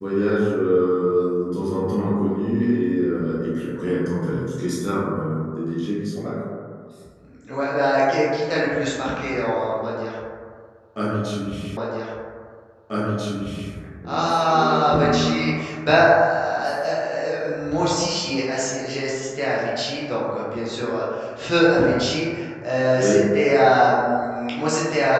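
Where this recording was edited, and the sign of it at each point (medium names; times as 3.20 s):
11.77 s: repeat of the last 1.94 s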